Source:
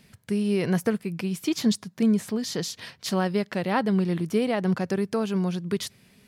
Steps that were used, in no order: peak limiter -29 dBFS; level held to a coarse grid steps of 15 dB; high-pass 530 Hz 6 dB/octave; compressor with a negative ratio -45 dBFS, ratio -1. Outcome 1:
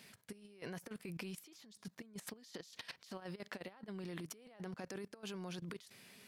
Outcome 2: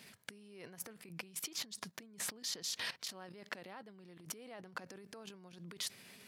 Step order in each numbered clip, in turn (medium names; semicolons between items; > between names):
peak limiter > high-pass > compressor with a negative ratio > level held to a coarse grid; level held to a coarse grid > peak limiter > compressor with a negative ratio > high-pass